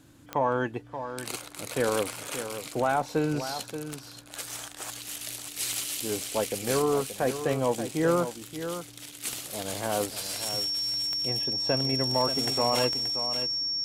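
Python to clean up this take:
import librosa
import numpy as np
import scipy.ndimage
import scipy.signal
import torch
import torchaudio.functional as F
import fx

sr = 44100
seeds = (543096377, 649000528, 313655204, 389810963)

y = fx.fix_declip(x, sr, threshold_db=-15.0)
y = fx.fix_declick_ar(y, sr, threshold=10.0)
y = fx.notch(y, sr, hz=5500.0, q=30.0)
y = fx.fix_echo_inverse(y, sr, delay_ms=579, level_db=-10.0)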